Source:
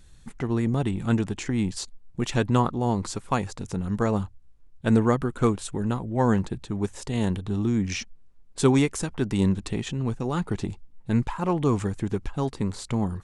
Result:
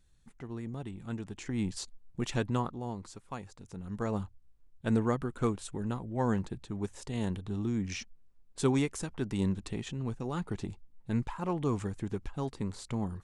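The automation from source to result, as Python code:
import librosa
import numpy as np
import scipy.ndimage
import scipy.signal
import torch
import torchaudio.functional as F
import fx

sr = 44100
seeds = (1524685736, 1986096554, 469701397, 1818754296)

y = fx.gain(x, sr, db=fx.line((1.17, -15.0), (1.63, -6.5), (2.31, -6.5), (3.08, -16.0), (3.63, -16.0), (4.15, -8.0)))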